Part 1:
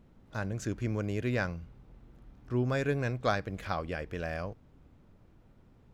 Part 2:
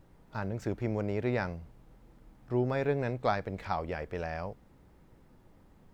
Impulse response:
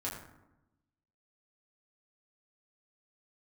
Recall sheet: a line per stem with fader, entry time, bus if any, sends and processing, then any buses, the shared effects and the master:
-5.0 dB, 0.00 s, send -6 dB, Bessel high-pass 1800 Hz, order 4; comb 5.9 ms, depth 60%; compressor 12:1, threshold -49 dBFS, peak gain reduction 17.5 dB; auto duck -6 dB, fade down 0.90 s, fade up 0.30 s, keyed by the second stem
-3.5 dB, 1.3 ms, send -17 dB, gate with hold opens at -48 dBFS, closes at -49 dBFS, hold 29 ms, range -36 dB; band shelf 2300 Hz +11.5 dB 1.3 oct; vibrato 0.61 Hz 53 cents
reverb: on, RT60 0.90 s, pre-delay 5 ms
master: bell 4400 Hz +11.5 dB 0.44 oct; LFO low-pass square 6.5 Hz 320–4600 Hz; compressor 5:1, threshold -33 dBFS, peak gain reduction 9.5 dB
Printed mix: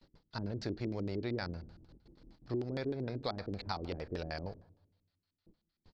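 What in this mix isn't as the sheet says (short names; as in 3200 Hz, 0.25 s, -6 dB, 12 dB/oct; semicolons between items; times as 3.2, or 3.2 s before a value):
stem 1 -5.0 dB -> -15.5 dB; stem 2: missing band shelf 2300 Hz +11.5 dB 1.3 oct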